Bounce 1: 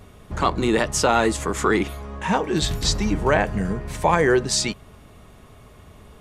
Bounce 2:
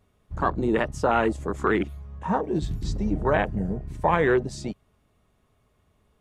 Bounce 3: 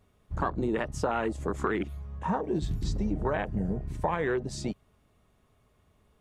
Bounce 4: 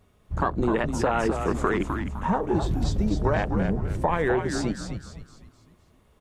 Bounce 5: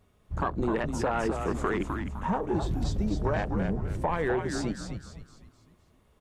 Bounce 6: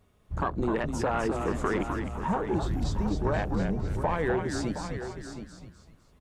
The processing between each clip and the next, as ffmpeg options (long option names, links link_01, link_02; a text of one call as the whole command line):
ffmpeg -i in.wav -af "afwtdn=0.0708,volume=-3dB" out.wav
ffmpeg -i in.wav -af "acompressor=threshold=-25dB:ratio=6" out.wav
ffmpeg -i in.wav -filter_complex "[0:a]asplit=6[link_01][link_02][link_03][link_04][link_05][link_06];[link_02]adelay=255,afreqshift=-98,volume=-6dB[link_07];[link_03]adelay=510,afreqshift=-196,volume=-14dB[link_08];[link_04]adelay=765,afreqshift=-294,volume=-21.9dB[link_09];[link_05]adelay=1020,afreqshift=-392,volume=-29.9dB[link_10];[link_06]adelay=1275,afreqshift=-490,volume=-37.8dB[link_11];[link_01][link_07][link_08][link_09][link_10][link_11]amix=inputs=6:normalize=0,volume=4.5dB" out.wav
ffmpeg -i in.wav -af "asoftclip=type=tanh:threshold=-12.5dB,volume=-3.5dB" out.wav
ffmpeg -i in.wav -af "aecho=1:1:718:0.316" out.wav